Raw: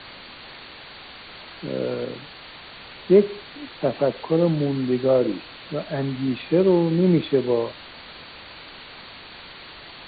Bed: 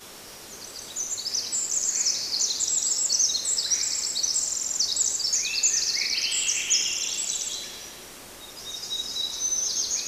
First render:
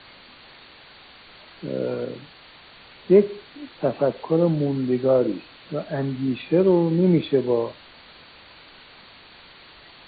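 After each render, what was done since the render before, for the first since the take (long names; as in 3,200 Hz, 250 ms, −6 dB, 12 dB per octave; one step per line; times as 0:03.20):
noise reduction from a noise print 6 dB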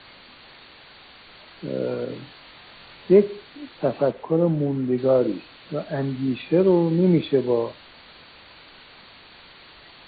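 0:02.07–0:03.13: flutter between parallel walls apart 4 metres, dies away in 0.25 s
0:04.11–0:04.98: high-frequency loss of the air 320 metres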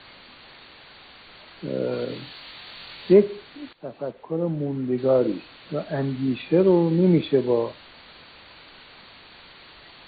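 0:01.92–0:03.12: high-shelf EQ 3,400 Hz → 2,600 Hz +10.5 dB
0:03.73–0:05.29: fade in, from −16.5 dB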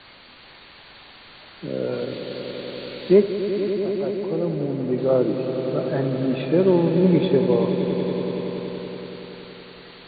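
echo that builds up and dies away 94 ms, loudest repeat 5, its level −12 dB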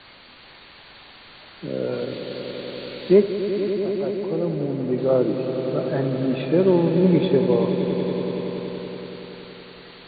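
no processing that can be heard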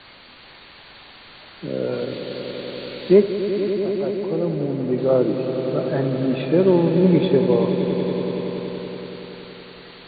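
level +1.5 dB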